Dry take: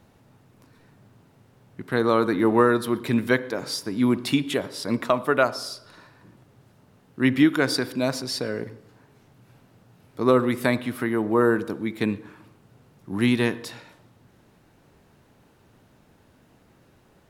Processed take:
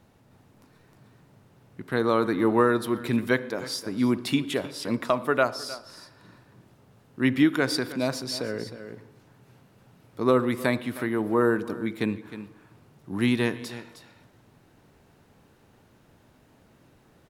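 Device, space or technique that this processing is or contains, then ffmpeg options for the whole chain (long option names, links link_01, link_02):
ducked delay: -filter_complex "[0:a]asplit=3[link_01][link_02][link_03];[link_02]adelay=310,volume=-3dB[link_04];[link_03]apad=whole_len=776314[link_05];[link_04][link_05]sidechaincompress=threshold=-32dB:ratio=8:attack=7:release=735[link_06];[link_01][link_06]amix=inputs=2:normalize=0,volume=-2.5dB"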